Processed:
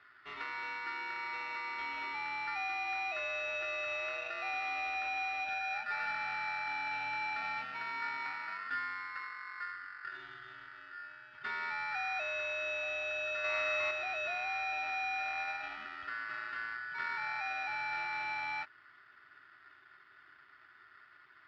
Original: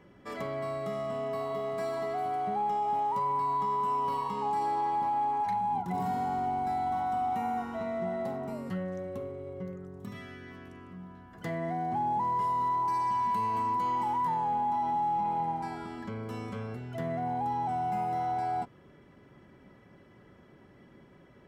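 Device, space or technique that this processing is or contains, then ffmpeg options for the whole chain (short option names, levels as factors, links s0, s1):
ring modulator pedal into a guitar cabinet: -filter_complex "[0:a]asettb=1/sr,asplit=3[s0][s1][s2];[s0]atrim=end=13.444[s3];[s1]atrim=start=13.44:end=13.91,asetpts=PTS-STARTPTS,afade=t=in:d=0.004:c=qsin,afade=t=out:st=0.466:d=0.004:c=qsin,equalizer=f=490:w=0.8:g=9.5[s4];[s2]atrim=start=13.906[s5];[s3][s4]acrossfade=d=0.004:c1=hsin:c2=qsin[s6];[s6][s5]acrossfade=d=0.004:c1=qsin:c2=hsin,aeval=exprs='val(0)*sgn(sin(2*PI*1600*n/s))':c=same,highpass=82,equalizer=f=190:t=q:w=4:g=-4,equalizer=f=520:t=q:w=4:g=-10,equalizer=f=1500:t=q:w=4:g=8,lowpass=f=3600:w=0.5412,lowpass=f=3600:w=1.3066,volume=0.473"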